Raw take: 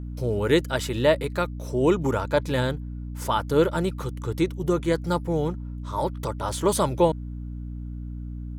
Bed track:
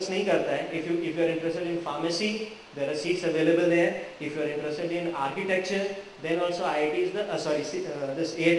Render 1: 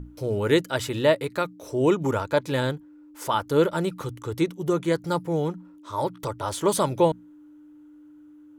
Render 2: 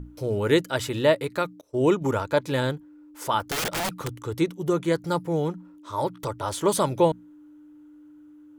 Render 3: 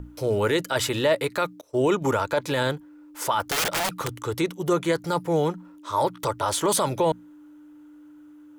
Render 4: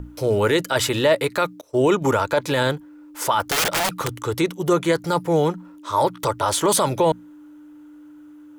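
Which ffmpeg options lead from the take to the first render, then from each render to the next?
-af "bandreject=f=60:t=h:w=6,bandreject=f=120:t=h:w=6,bandreject=f=180:t=h:w=6,bandreject=f=240:t=h:w=6"
-filter_complex "[0:a]asettb=1/sr,asplit=3[s0][s1][s2];[s0]atrim=end=1.614[s3];[s1]atrim=start=1.61:end=2.14,asetpts=PTS-STARTPTS,afade=t=in:d=0.004:c=qsin,afade=t=out:st=0.526:d=0.004:c=qsin,agate=range=0.0224:threshold=0.0398:ratio=3:release=100:detection=peak[s4];[s2]atrim=start=2.136[s5];[s3][s4]acrossfade=d=0.004:c1=hsin:c2=qsin[s6];[s6][s5]acrossfade=d=0.004:c1=qsin:c2=hsin,asplit=3[s7][s8][s9];[s7]afade=t=out:st=3.4:d=0.02[s10];[s8]aeval=exprs='(mod(13.3*val(0)+1,2)-1)/13.3':c=same,afade=t=in:st=3.4:d=0.02,afade=t=out:st=4.2:d=0.02[s11];[s9]afade=t=in:st=4.2:d=0.02[s12];[s10][s11][s12]amix=inputs=3:normalize=0"
-filter_complex "[0:a]acrossover=split=480[s0][s1];[s1]acontrast=69[s2];[s0][s2]amix=inputs=2:normalize=0,alimiter=limit=0.211:level=0:latency=1:release=16"
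-af "volume=1.58"

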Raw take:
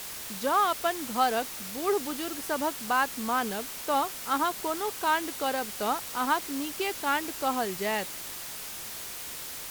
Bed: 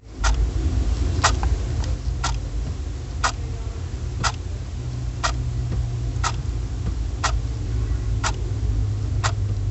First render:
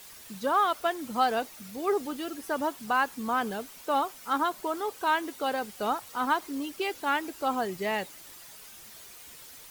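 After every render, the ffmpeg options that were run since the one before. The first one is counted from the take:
-af "afftdn=nr=11:nf=-39"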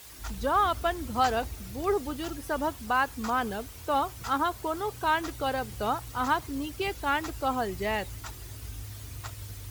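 -filter_complex "[1:a]volume=0.119[s0];[0:a][s0]amix=inputs=2:normalize=0"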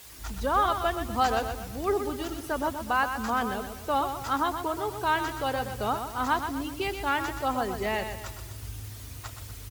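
-af "aecho=1:1:124|248|372|496|620:0.398|0.175|0.0771|0.0339|0.0149"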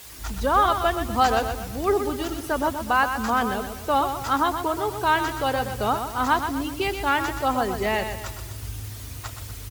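-af "volume=1.78"

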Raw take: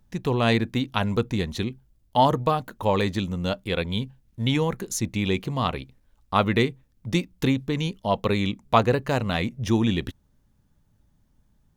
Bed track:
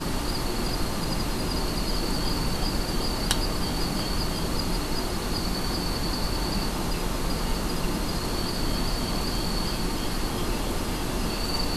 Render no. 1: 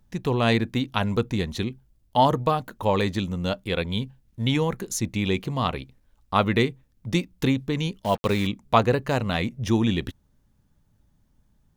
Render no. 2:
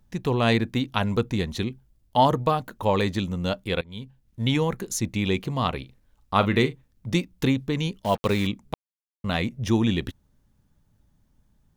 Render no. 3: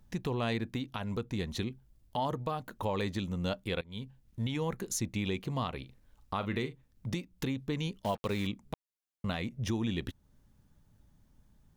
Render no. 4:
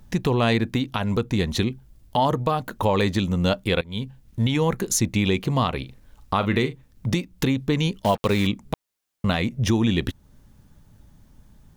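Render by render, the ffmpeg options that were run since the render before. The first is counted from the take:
-filter_complex "[0:a]asettb=1/sr,asplit=3[s0][s1][s2];[s0]atrim=end=8.044[s3];[s1]atrim=start=8.04:end=8.47,asetpts=PTS-STARTPTS,afade=t=in:d=0.004:c=qsin,afade=t=out:st=0.426:d=0.004:c=qsin,acrusher=bits=5:mix=0:aa=0.5[s4];[s2]atrim=start=8.466[s5];[s3][s4]acrossfade=d=0.004:c1=hsin:c2=qsin[s6];[s6][s5]acrossfade=d=0.004:c1=qsin:c2=hsin"
-filter_complex "[0:a]asettb=1/sr,asplit=3[s0][s1][s2];[s0]atrim=end=5.794[s3];[s1]atrim=start=5.79:end=7.16,asetpts=PTS-STARTPTS,afade=t=in:d=0.004:c=qsin,afade=t=out:st=1.366:d=0.004:c=qsin,asplit=2[s4][s5];[s5]adelay=40,volume=0.224[s6];[s4][s6]amix=inputs=2:normalize=0,atrim=end_sample=60417[s7];[s2]atrim=start=7.156[s8];[s3][s7]acrossfade=d=0.004:c1=hsin:c2=qsin[s9];[s9][s8]acrossfade=d=0.004:c1=qsin:c2=hsin,asplit=4[s10][s11][s12][s13];[s10]atrim=end=3.81,asetpts=PTS-STARTPTS,afade=t=out:st=3.806:d=0.004:c=hsin:silence=0.0794328[s14];[s11]atrim=start=3.81:end=8.74,asetpts=PTS-STARTPTS,afade=t=in:d=0.62:silence=0.0794328,afade=t=out:st=4.926:d=0.004:c=hsin[s15];[s12]atrim=start=8.74:end=9.24,asetpts=PTS-STARTPTS,volume=0[s16];[s13]atrim=start=9.24,asetpts=PTS-STARTPTS,afade=t=in:d=0.004:c=hsin[s17];[s14][s15][s16][s17]concat=n=4:v=0:a=1"
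-af "acompressor=threshold=0.00891:ratio=1.5,alimiter=limit=0.075:level=0:latency=1:release=230"
-af "volume=3.98"

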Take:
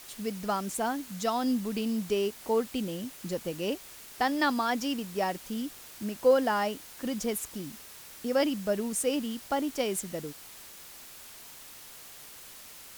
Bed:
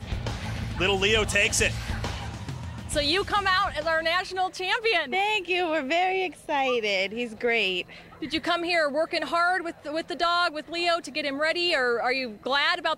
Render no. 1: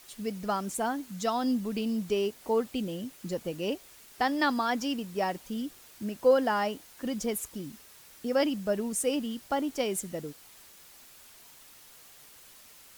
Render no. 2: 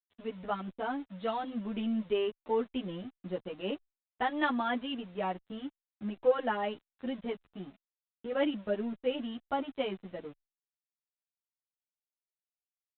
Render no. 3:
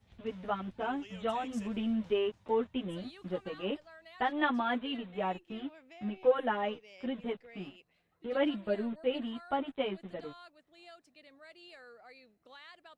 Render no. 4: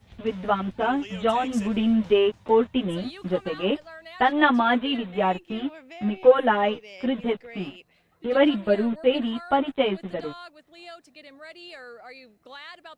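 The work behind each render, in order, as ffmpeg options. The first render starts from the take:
-af "afftdn=nr=6:nf=-48"
-filter_complex "[0:a]aresample=8000,aeval=exprs='sgn(val(0))*max(abs(val(0))-0.00422,0)':c=same,aresample=44100,asplit=2[s0][s1];[s1]adelay=9.6,afreqshift=0.44[s2];[s0][s2]amix=inputs=2:normalize=1"
-filter_complex "[1:a]volume=0.0335[s0];[0:a][s0]amix=inputs=2:normalize=0"
-af "volume=3.55"

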